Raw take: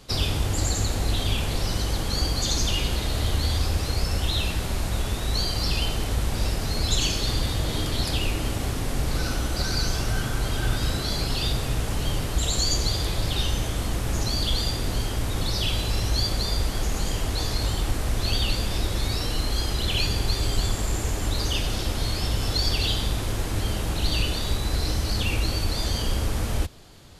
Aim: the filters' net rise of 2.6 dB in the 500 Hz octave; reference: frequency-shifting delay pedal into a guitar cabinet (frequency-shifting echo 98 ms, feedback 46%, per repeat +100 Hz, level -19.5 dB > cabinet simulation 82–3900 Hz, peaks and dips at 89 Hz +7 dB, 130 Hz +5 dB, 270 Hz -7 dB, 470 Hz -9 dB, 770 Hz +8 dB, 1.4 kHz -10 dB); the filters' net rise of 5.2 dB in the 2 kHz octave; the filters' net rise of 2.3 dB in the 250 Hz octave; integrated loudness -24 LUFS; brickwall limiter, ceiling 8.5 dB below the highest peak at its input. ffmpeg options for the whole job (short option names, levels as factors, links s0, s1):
-filter_complex "[0:a]equalizer=f=250:t=o:g=5,equalizer=f=500:t=o:g=5,equalizer=f=2000:t=o:g=9,alimiter=limit=0.141:level=0:latency=1,asplit=5[s0][s1][s2][s3][s4];[s1]adelay=98,afreqshift=100,volume=0.106[s5];[s2]adelay=196,afreqshift=200,volume=0.049[s6];[s3]adelay=294,afreqshift=300,volume=0.0224[s7];[s4]adelay=392,afreqshift=400,volume=0.0104[s8];[s0][s5][s6][s7][s8]amix=inputs=5:normalize=0,highpass=82,equalizer=f=89:t=q:w=4:g=7,equalizer=f=130:t=q:w=4:g=5,equalizer=f=270:t=q:w=4:g=-7,equalizer=f=470:t=q:w=4:g=-9,equalizer=f=770:t=q:w=4:g=8,equalizer=f=1400:t=q:w=4:g=-10,lowpass=f=3900:w=0.5412,lowpass=f=3900:w=1.3066,volume=1.68"